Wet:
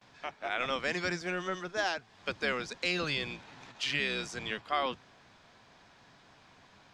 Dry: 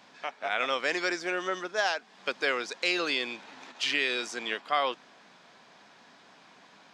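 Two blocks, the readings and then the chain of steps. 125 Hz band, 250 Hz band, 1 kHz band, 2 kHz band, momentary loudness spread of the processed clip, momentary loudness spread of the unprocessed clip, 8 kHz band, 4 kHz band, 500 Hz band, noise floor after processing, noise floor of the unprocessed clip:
+12.5 dB, -1.5 dB, -4.0 dB, -4.0 dB, 9 LU, 9 LU, -4.0 dB, -4.0 dB, -4.0 dB, -61 dBFS, -57 dBFS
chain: octaver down 1 oct, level +2 dB; gate with hold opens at -48 dBFS; gain -4 dB

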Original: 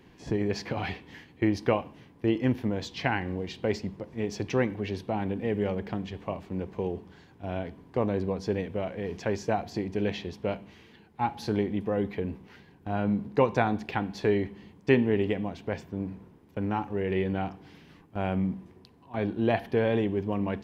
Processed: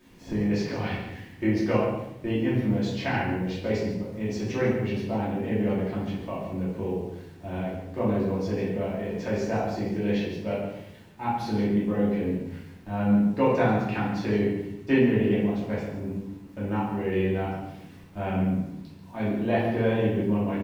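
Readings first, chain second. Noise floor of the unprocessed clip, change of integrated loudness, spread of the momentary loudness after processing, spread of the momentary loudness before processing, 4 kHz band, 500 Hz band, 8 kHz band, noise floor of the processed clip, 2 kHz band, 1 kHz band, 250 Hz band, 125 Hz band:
-56 dBFS, +3.0 dB, 11 LU, 11 LU, 0.0 dB, +1.5 dB, n/a, -47 dBFS, +1.5 dB, +1.0 dB, +4.5 dB, +4.0 dB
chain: requantised 10-bit, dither none; on a send: echo 0.14 s -10.5 dB; on the sum: shoebox room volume 240 m³, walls mixed, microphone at 2.7 m; gain -8 dB

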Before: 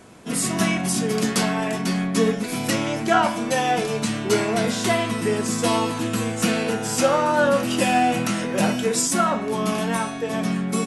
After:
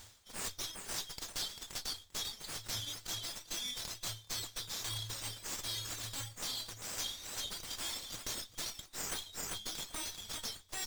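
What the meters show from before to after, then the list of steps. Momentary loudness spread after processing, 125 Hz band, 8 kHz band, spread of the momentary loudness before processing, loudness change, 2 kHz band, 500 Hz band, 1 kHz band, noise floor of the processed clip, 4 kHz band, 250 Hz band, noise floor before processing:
3 LU, -22.5 dB, -12.0 dB, 5 LU, -17.5 dB, -21.5 dB, -32.0 dB, -28.0 dB, -60 dBFS, -8.5 dB, -34.0 dB, -29 dBFS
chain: high shelf 3200 Hz +10 dB; on a send: thinning echo 0.395 s, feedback 25%, level -9 dB; on the sum: FFT band-reject 110–3100 Hz; reverb removal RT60 1.5 s; reverse; compressor 16:1, threshold -34 dBFS, peak gain reduction 23.5 dB; reverse; running maximum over 3 samples; gain -1.5 dB

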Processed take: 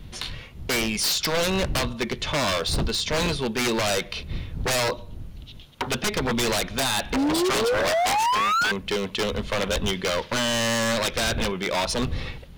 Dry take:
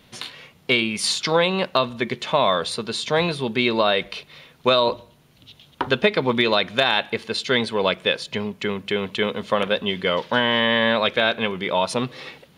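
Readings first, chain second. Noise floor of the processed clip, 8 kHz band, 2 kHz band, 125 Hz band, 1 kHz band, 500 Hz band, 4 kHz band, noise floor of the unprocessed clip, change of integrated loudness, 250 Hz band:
-42 dBFS, +7.5 dB, -3.5 dB, +1.5 dB, -1.5 dB, -4.5 dB, -3.0 dB, -54 dBFS, -2.5 dB, -1.5 dB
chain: wind noise 86 Hz -33 dBFS; dynamic EQ 5600 Hz, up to +6 dB, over -43 dBFS, Q 2.4; painted sound rise, 7.13–8.72, 250–1600 Hz -19 dBFS; wavefolder -18 dBFS

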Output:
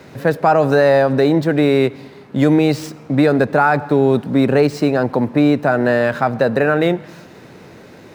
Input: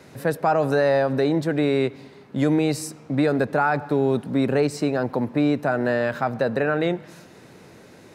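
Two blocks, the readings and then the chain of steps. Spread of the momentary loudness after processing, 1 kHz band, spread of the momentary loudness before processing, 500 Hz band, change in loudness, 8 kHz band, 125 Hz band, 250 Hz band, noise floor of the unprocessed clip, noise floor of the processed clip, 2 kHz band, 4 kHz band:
6 LU, +7.0 dB, 5 LU, +7.0 dB, +7.0 dB, n/a, +7.0 dB, +7.0 dB, -48 dBFS, -41 dBFS, +7.0 dB, +6.0 dB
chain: median filter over 5 samples; gain +7 dB

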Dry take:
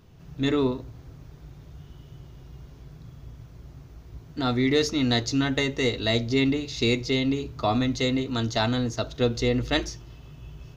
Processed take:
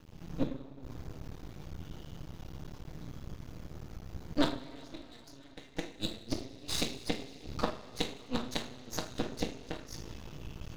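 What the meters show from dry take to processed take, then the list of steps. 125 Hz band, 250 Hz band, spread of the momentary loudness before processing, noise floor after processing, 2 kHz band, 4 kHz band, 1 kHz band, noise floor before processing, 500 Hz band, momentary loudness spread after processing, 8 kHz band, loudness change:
-14.0 dB, -13.0 dB, 13 LU, -52 dBFS, -14.5 dB, -11.0 dB, -10.5 dB, -48 dBFS, -14.5 dB, 14 LU, n/a, -14.5 dB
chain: flipped gate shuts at -18 dBFS, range -33 dB; two-slope reverb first 0.38 s, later 4.1 s, from -21 dB, DRR -0.5 dB; half-wave rectifier; gain +2.5 dB

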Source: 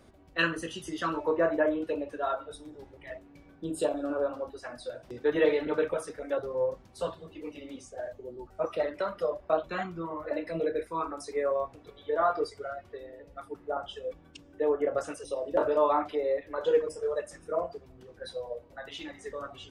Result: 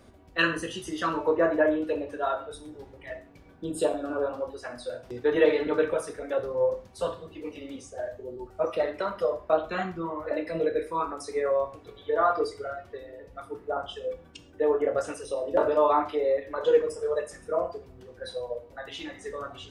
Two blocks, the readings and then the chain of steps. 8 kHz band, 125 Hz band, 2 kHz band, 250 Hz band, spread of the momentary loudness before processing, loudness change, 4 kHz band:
+3.0 dB, +2.5 dB, +3.0 dB, +2.5 dB, 17 LU, +3.0 dB, +3.0 dB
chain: non-linear reverb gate 0.16 s falling, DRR 8.5 dB; gain +2.5 dB

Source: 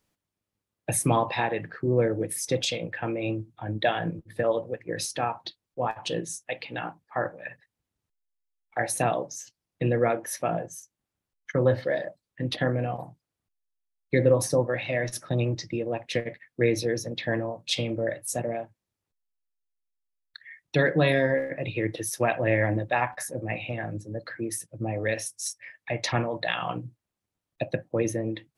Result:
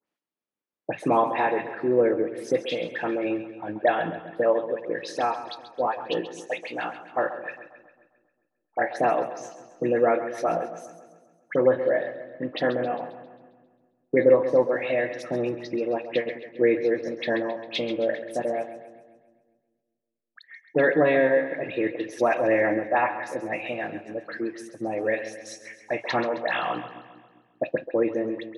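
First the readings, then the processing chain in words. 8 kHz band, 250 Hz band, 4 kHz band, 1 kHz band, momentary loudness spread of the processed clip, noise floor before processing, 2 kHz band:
under -10 dB, +2.0 dB, -4.0 dB, +4.0 dB, 13 LU, under -85 dBFS, +1.5 dB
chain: gate -46 dBFS, range -6 dB; in parallel at -6.5 dB: backlash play -37.5 dBFS; on the sum: bell 210 Hz +2.5 dB 1.9 oct; dispersion highs, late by 71 ms, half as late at 2400 Hz; treble ducked by the level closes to 2100 Hz, closed at -19.5 dBFS; three-band isolator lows -24 dB, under 240 Hz, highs -12 dB, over 3800 Hz; on a send: split-band echo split 360 Hz, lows 0.198 s, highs 0.134 s, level -12 dB

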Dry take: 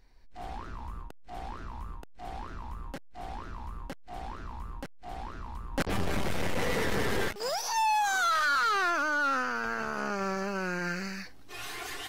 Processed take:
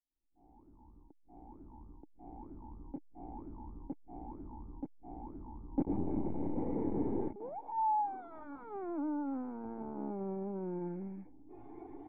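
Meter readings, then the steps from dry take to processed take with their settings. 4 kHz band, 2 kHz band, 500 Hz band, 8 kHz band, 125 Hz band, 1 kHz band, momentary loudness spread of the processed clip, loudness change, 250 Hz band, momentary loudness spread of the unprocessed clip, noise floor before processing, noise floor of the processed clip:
under -40 dB, under -30 dB, -6.5 dB, under -40 dB, -6.5 dB, -9.0 dB, 19 LU, -9.0 dB, +0.5 dB, 18 LU, -47 dBFS, -64 dBFS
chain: opening faded in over 3.37 s; vocal tract filter u; gain +6.5 dB

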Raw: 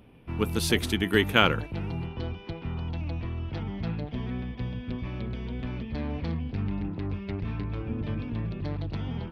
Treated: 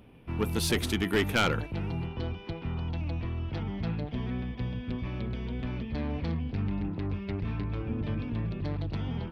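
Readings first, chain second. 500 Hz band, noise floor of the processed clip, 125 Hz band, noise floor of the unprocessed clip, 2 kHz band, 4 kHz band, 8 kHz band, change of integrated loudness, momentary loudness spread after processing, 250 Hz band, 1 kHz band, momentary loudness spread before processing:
-2.5 dB, -44 dBFS, -0.5 dB, -44 dBFS, -4.0 dB, -4.5 dB, n/a, -2.0 dB, 8 LU, -1.5 dB, -3.5 dB, 10 LU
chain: soft clip -18.5 dBFS, distortion -11 dB

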